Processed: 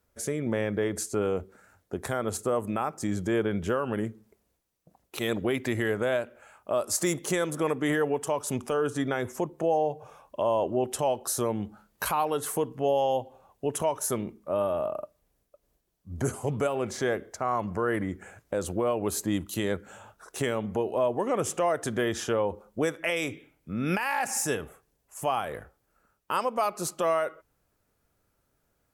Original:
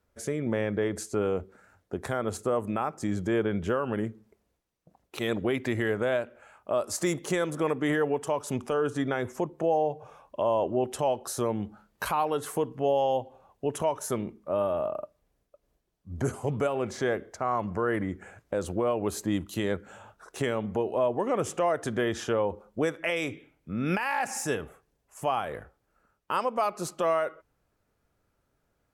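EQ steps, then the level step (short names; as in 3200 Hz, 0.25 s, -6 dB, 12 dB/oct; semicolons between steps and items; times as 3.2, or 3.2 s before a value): high shelf 6900 Hz +9.5 dB; 0.0 dB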